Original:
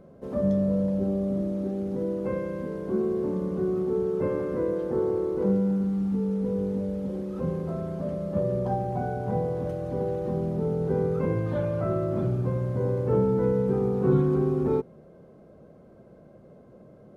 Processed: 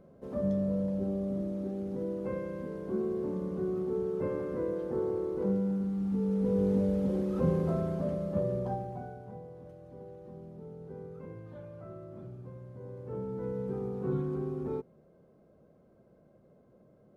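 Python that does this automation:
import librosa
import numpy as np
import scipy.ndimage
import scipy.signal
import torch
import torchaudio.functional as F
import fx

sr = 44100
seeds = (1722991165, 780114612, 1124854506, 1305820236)

y = fx.gain(x, sr, db=fx.line((5.95, -6.0), (6.73, 1.5), (7.68, 1.5), (8.7, -6.5), (9.39, -19.0), (12.8, -19.0), (13.64, -10.5)))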